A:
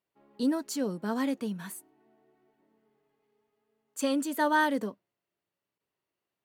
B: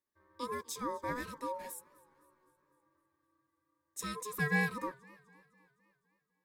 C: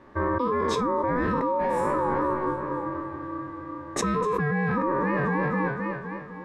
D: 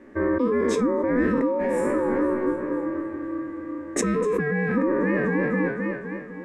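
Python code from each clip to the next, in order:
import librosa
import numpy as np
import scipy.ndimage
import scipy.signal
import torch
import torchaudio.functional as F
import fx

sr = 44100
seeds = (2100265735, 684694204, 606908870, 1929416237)

y1 = fx.fixed_phaser(x, sr, hz=410.0, stages=8)
y1 = y1 * np.sin(2.0 * np.pi * 740.0 * np.arange(len(y1)) / sr)
y1 = fx.echo_warbled(y1, sr, ms=255, feedback_pct=55, rate_hz=2.8, cents=135, wet_db=-23.5)
y2 = fx.spec_trails(y1, sr, decay_s=0.47)
y2 = scipy.signal.sosfilt(scipy.signal.butter(2, 1200.0, 'lowpass', fs=sr, output='sos'), y2)
y2 = fx.env_flatten(y2, sr, amount_pct=100)
y2 = F.gain(torch.from_numpy(y2), 4.5).numpy()
y3 = fx.graphic_eq(y2, sr, hz=(125, 250, 500, 1000, 2000, 4000, 8000), db=(-11, 10, 4, -10, 7, -8, 7))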